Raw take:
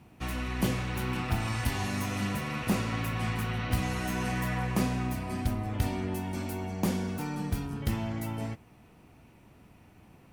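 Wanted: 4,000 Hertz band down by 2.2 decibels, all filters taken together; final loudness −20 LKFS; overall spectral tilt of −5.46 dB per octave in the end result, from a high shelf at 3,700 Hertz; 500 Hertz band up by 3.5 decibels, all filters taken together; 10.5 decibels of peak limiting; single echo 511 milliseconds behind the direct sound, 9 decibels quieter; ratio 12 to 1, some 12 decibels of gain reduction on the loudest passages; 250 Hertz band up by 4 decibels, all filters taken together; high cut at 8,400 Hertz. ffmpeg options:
ffmpeg -i in.wav -af "lowpass=8400,equalizer=frequency=250:width_type=o:gain=4.5,equalizer=frequency=500:width_type=o:gain=3,highshelf=frequency=3700:gain=8,equalizer=frequency=4000:width_type=o:gain=-8.5,acompressor=threshold=-32dB:ratio=12,alimiter=level_in=5dB:limit=-24dB:level=0:latency=1,volume=-5dB,aecho=1:1:511:0.355,volume=18dB" out.wav

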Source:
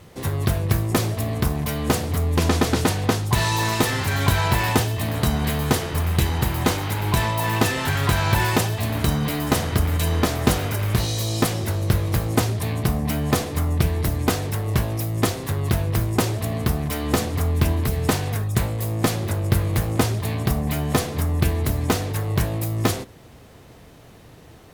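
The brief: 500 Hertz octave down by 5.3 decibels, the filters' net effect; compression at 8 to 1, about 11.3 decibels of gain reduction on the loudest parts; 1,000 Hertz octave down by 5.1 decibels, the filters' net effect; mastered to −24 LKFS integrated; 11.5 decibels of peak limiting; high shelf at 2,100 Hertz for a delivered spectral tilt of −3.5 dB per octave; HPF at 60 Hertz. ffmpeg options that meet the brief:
ffmpeg -i in.wav -af "highpass=60,equalizer=frequency=500:width_type=o:gain=-6,equalizer=frequency=1000:width_type=o:gain=-6.5,highshelf=frequency=2100:gain=8.5,acompressor=threshold=-27dB:ratio=8,volume=7.5dB,alimiter=limit=-14dB:level=0:latency=1" out.wav

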